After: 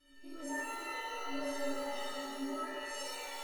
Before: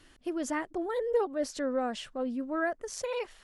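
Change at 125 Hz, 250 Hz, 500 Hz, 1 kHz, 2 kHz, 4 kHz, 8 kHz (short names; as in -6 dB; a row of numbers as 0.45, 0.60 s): n/a, -8.5 dB, -11.0 dB, -4.0 dB, -3.0 dB, +1.0 dB, -3.0 dB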